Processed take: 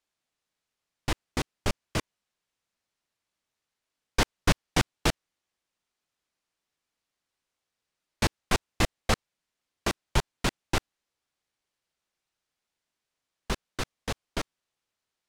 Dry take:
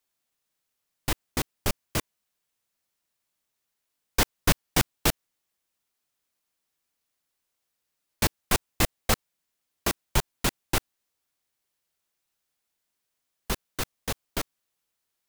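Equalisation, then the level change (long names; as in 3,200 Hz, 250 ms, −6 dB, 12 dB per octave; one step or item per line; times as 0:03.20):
high-frequency loss of the air 57 metres
0.0 dB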